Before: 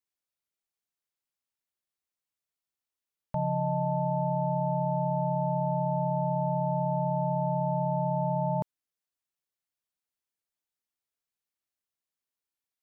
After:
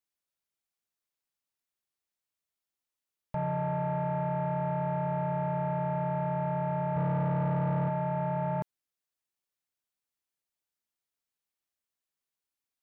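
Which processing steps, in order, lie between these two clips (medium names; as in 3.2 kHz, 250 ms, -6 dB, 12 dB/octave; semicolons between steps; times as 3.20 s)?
6.96–7.89 s: bass shelf 190 Hz +11 dB; saturation -25 dBFS, distortion -12 dB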